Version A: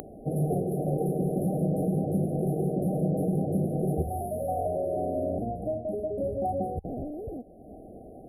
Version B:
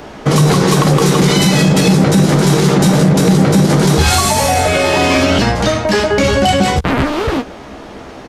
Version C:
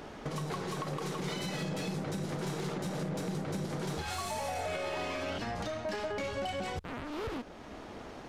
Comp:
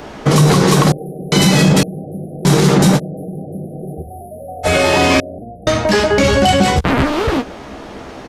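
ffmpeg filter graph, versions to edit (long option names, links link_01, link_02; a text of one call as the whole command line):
ffmpeg -i take0.wav -i take1.wav -filter_complex "[0:a]asplit=4[link_01][link_02][link_03][link_04];[1:a]asplit=5[link_05][link_06][link_07][link_08][link_09];[link_05]atrim=end=0.922[link_10];[link_01]atrim=start=0.918:end=1.322[link_11];[link_06]atrim=start=1.318:end=1.832[link_12];[link_02]atrim=start=1.828:end=2.452[link_13];[link_07]atrim=start=2.448:end=3[link_14];[link_03]atrim=start=2.96:end=4.67[link_15];[link_08]atrim=start=4.63:end=5.202[link_16];[link_04]atrim=start=5.198:end=5.672[link_17];[link_09]atrim=start=5.668[link_18];[link_10][link_11]acrossfade=duration=0.004:curve1=hsin:curve2=hsin[link_19];[link_19][link_12]acrossfade=duration=0.004:curve1=hsin:curve2=hsin[link_20];[link_20][link_13]acrossfade=duration=0.004:curve1=hsin:curve2=hsin[link_21];[link_21][link_14]acrossfade=duration=0.004:curve1=hsin:curve2=hsin[link_22];[link_22][link_15]acrossfade=duration=0.04:curve1=tri:curve2=tri[link_23];[link_23][link_16]acrossfade=duration=0.04:curve1=tri:curve2=tri[link_24];[link_24][link_17]acrossfade=duration=0.004:curve1=hsin:curve2=hsin[link_25];[link_25][link_18]acrossfade=duration=0.004:curve1=hsin:curve2=hsin" out.wav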